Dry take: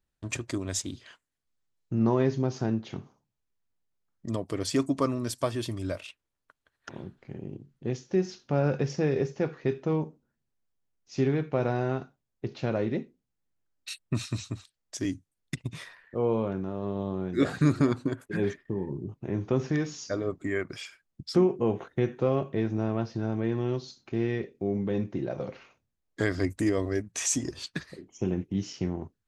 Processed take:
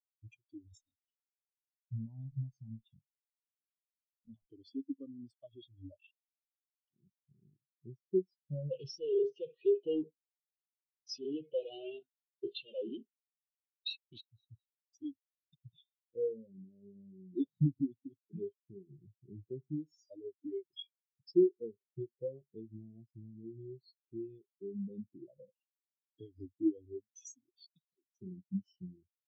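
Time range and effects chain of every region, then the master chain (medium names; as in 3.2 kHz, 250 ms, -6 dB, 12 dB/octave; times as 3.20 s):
0.68–4.49 s: comb filter that takes the minimum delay 1.1 ms + compression 3:1, threshold -28 dBFS
8.71–14.21 s: overdrive pedal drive 32 dB, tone 7.1 kHz, clips at -13 dBFS + loudspeaker Doppler distortion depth 0.46 ms
whole clip: resonant high shelf 2.3 kHz +10 dB, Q 3; compression 3:1, threshold -34 dBFS; spectral contrast expander 4:1; trim -1 dB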